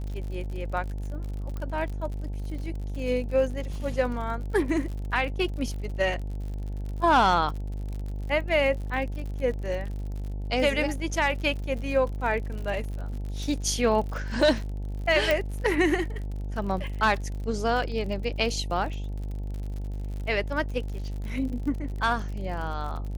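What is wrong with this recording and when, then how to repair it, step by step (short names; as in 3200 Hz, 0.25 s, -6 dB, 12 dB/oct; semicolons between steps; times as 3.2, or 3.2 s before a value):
buzz 50 Hz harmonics 18 -32 dBFS
crackle 59/s -35 dBFS
1.57 pop -23 dBFS
15.31 pop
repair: de-click; de-hum 50 Hz, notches 18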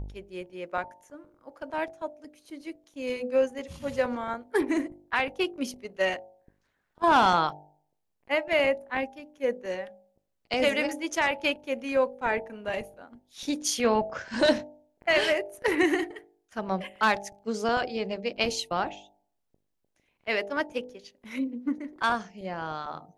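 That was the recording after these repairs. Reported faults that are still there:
1.57 pop
15.31 pop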